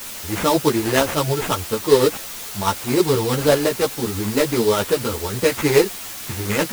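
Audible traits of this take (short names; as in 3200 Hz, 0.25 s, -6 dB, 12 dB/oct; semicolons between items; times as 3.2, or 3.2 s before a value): aliases and images of a low sample rate 4500 Hz, jitter 20%; tremolo triangle 9.4 Hz, depth 45%; a quantiser's noise floor 6-bit, dither triangular; a shimmering, thickened sound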